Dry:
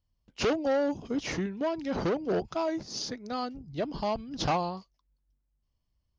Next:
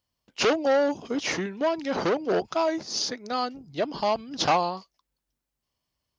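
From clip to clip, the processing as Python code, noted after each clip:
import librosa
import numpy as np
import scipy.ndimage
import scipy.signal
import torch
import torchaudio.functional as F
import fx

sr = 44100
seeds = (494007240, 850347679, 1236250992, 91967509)

y = fx.highpass(x, sr, hz=470.0, slope=6)
y = y * 10.0 ** (7.5 / 20.0)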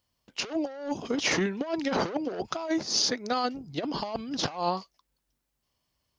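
y = fx.over_compress(x, sr, threshold_db=-28.0, ratio=-0.5)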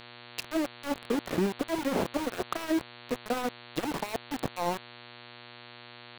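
y = fx.env_lowpass_down(x, sr, base_hz=730.0, full_db=-26.0)
y = np.where(np.abs(y) >= 10.0 ** (-30.5 / 20.0), y, 0.0)
y = fx.dmg_buzz(y, sr, base_hz=120.0, harmonics=37, level_db=-50.0, tilt_db=-1, odd_only=False)
y = y * 10.0 ** (1.0 / 20.0)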